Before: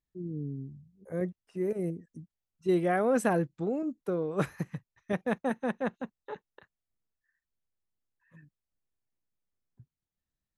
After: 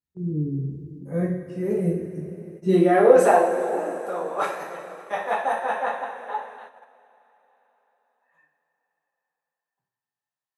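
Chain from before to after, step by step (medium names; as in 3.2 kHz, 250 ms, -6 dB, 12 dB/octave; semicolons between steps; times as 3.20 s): high-pass sweep 81 Hz -> 810 Hz, 2.23–3.38 s; two-slope reverb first 0.49 s, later 4.5 s, from -16 dB, DRR -6.5 dB; gate -41 dBFS, range -10 dB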